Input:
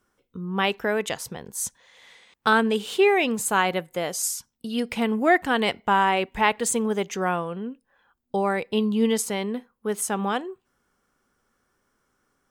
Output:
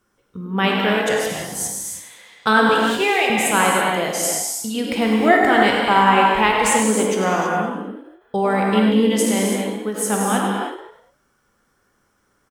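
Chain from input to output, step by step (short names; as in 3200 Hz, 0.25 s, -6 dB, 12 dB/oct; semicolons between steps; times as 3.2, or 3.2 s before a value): 2.69–3.3 HPF 570 Hz 12 dB/oct; frequency-shifting echo 0.101 s, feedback 41%, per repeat +56 Hz, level -10 dB; non-linear reverb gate 0.35 s flat, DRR -1.5 dB; ending taper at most 150 dB/s; gain +2.5 dB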